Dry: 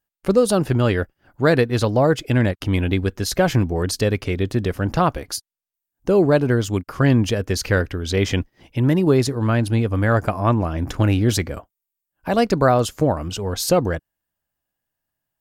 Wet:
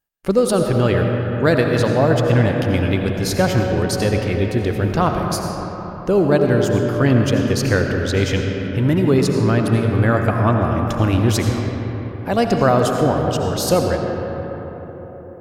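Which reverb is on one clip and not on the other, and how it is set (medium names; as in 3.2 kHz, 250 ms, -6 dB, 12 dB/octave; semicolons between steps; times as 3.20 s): algorithmic reverb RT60 4.6 s, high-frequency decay 0.4×, pre-delay 45 ms, DRR 2 dB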